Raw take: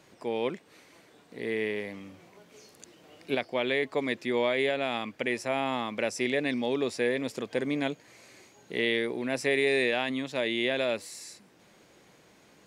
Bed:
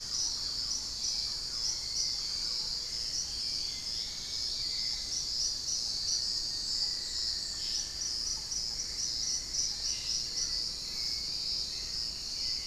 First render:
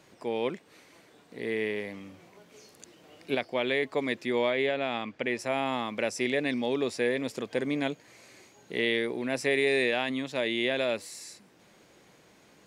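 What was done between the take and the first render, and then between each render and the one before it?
0:04.50–0:05.39: high-frequency loss of the air 80 metres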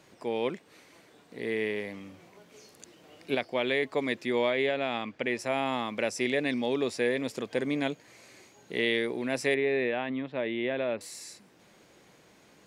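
0:09.54–0:11.01: high-frequency loss of the air 470 metres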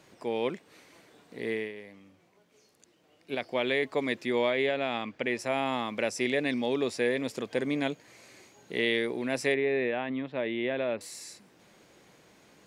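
0:01.51–0:03.47: duck −10.5 dB, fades 0.21 s
0:09.52–0:10.11: high-frequency loss of the air 100 metres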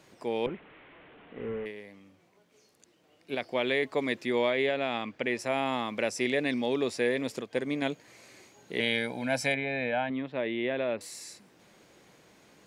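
0:00.46–0:01.66: linear delta modulator 16 kbit/s, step −47.5 dBFS
0:07.40–0:07.82: expander for the loud parts, over −39 dBFS
0:08.80–0:10.10: comb filter 1.3 ms, depth 84%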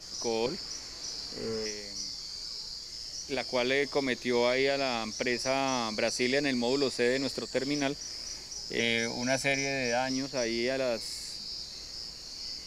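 mix in bed −5.5 dB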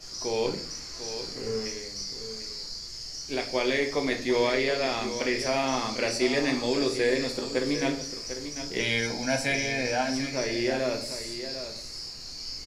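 single-tap delay 747 ms −10.5 dB
rectangular room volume 49 cubic metres, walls mixed, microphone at 0.48 metres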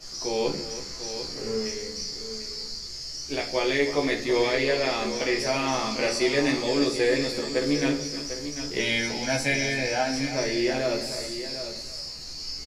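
double-tracking delay 14 ms −3 dB
single-tap delay 323 ms −13.5 dB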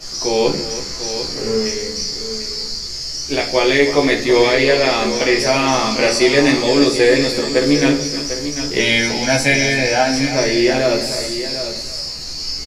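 level +10.5 dB
brickwall limiter −1 dBFS, peak gain reduction 1 dB

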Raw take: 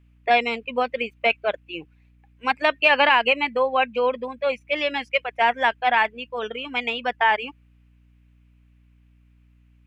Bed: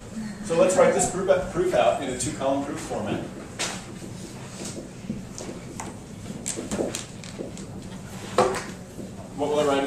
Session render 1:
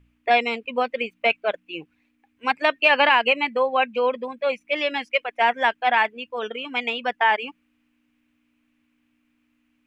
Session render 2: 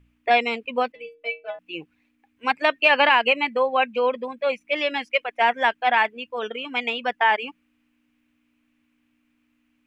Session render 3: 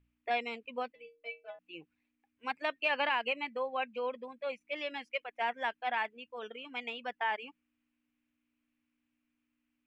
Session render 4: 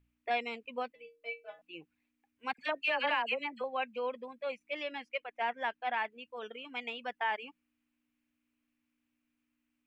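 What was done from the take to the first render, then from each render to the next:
hum removal 60 Hz, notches 3
0:00.92–0:01.59: stiff-string resonator 150 Hz, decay 0.36 s, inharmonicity 0.008
level −14 dB
0:01.20–0:01.66: double-tracking delay 26 ms −6 dB; 0:02.53–0:03.64: all-pass dispersion lows, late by 55 ms, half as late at 1,300 Hz; 0:04.83–0:06.12: high-shelf EQ 4,600 Hz −6.5 dB

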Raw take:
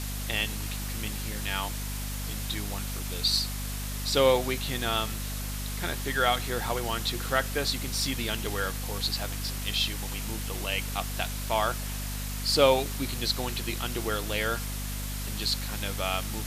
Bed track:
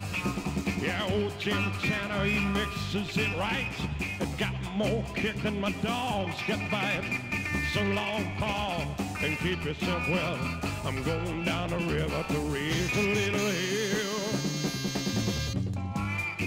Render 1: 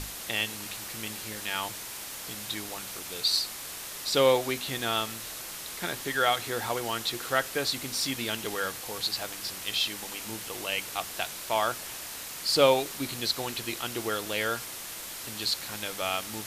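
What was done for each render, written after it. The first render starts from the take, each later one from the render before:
mains-hum notches 50/100/150/200/250 Hz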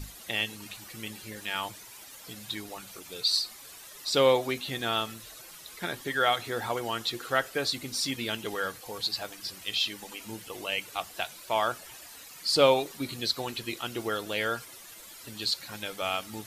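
broadband denoise 12 dB, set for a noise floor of −40 dBFS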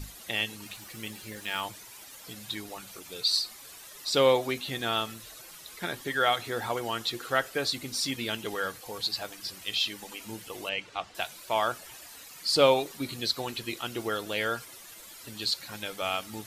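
0:00.64–0:01.61: log-companded quantiser 6 bits
0:10.69–0:11.15: high-frequency loss of the air 120 metres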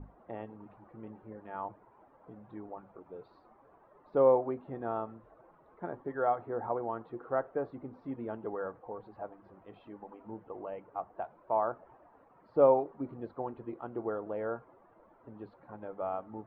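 low-pass filter 1,000 Hz 24 dB per octave
low-shelf EQ 210 Hz −8.5 dB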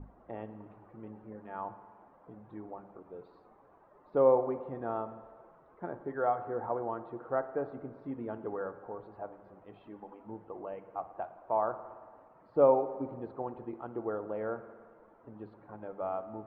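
high-frequency loss of the air 87 metres
spring reverb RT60 1.7 s, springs 56 ms, chirp 55 ms, DRR 12 dB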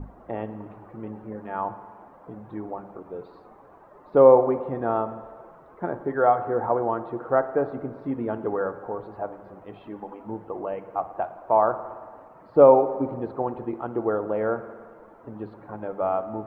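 level +10.5 dB
brickwall limiter −3 dBFS, peak gain reduction 1.5 dB

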